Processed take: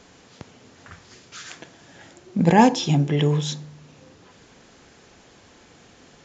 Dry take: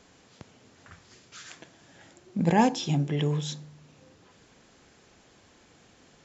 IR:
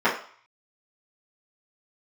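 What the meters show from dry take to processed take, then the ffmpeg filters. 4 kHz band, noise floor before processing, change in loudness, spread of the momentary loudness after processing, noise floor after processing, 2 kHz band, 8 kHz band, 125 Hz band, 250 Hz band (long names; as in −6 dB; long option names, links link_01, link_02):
+6.5 dB, −59 dBFS, +7.0 dB, 21 LU, −52 dBFS, +7.0 dB, can't be measured, +6.5 dB, +6.5 dB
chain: -filter_complex "[0:a]asplit=2[link_01][link_02];[1:a]atrim=start_sample=2205[link_03];[link_02][link_03]afir=irnorm=-1:irlink=0,volume=-34.5dB[link_04];[link_01][link_04]amix=inputs=2:normalize=0,aresample=16000,aresample=44100,volume=6.5dB"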